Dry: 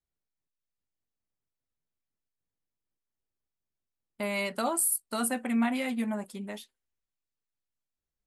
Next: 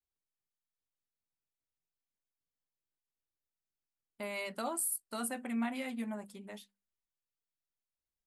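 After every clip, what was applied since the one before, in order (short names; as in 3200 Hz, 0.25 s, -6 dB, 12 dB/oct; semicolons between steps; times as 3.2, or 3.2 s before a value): notches 50/100/150/200/250 Hz; gain -7.5 dB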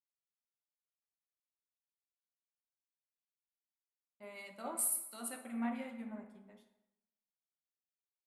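plate-style reverb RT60 1.8 s, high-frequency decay 0.55×, DRR 3.5 dB; three-band expander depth 100%; gain -9 dB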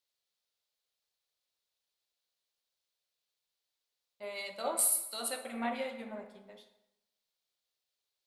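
graphic EQ 250/500/4000 Hz -8/+8/+12 dB; gain +4.5 dB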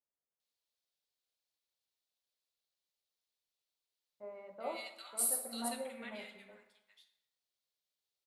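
bands offset in time lows, highs 0.4 s, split 1400 Hz; gain -4.5 dB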